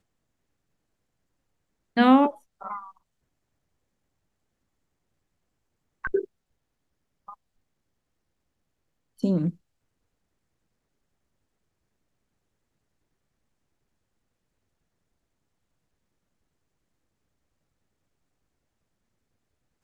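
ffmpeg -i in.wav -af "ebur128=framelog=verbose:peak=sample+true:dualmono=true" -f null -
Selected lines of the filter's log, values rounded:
Integrated loudness:
  I:         -20.4 LUFS
  Threshold: -33.3 LUFS
Loudness range:
  LRA:        12.5 LU
  Threshold: -48.9 LUFS
  LRA low:   -36.2 LUFS
  LRA high:  -23.8 LUFS
Sample peak:
  Peak:       -6.3 dBFS
True peak:
  Peak:       -6.3 dBFS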